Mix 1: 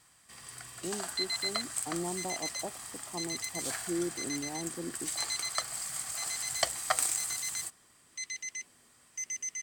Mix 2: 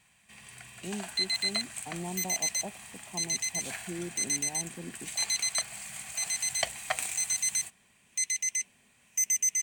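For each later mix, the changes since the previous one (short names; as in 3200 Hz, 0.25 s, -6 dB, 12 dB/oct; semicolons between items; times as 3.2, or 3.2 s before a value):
second sound: remove air absorption 210 m; master: add thirty-one-band EQ 200 Hz +8 dB, 315 Hz -10 dB, 500 Hz -4 dB, 1250 Hz -10 dB, 2500 Hz +10 dB, 5000 Hz -10 dB, 8000 Hz -5 dB, 12500 Hz -9 dB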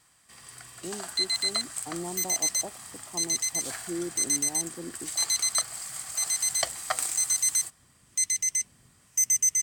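second sound: remove HPF 270 Hz 24 dB/oct; master: add thirty-one-band EQ 200 Hz -8 dB, 315 Hz +10 dB, 500 Hz +4 dB, 1250 Hz +10 dB, 2500 Hz -10 dB, 5000 Hz +10 dB, 8000 Hz +5 dB, 12500 Hz +9 dB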